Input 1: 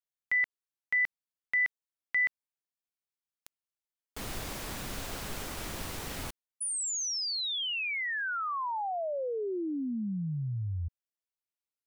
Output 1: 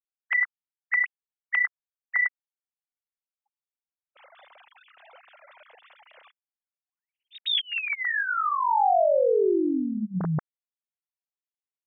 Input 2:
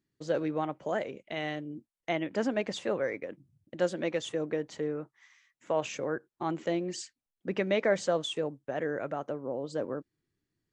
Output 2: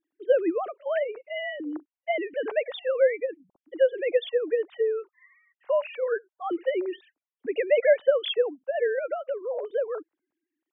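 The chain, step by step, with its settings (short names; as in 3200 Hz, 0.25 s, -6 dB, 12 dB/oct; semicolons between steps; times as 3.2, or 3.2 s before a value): sine-wave speech; gain +6 dB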